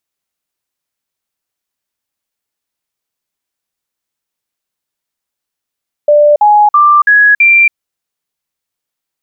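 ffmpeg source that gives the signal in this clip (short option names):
-f lavfi -i "aevalsrc='0.708*clip(min(mod(t,0.33),0.28-mod(t,0.33))/0.005,0,1)*sin(2*PI*591*pow(2,floor(t/0.33)/2)*mod(t,0.33))':d=1.65:s=44100"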